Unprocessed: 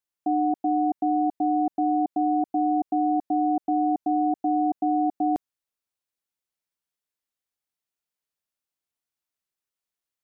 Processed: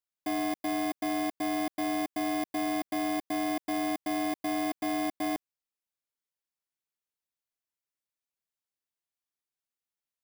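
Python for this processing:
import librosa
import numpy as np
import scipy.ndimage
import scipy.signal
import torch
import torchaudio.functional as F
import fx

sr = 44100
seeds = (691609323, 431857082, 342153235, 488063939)

y = fx.bit_reversed(x, sr, seeds[0], block=32)
y = fx.slew_limit(y, sr, full_power_hz=170.0)
y = y * librosa.db_to_amplitude(-6.0)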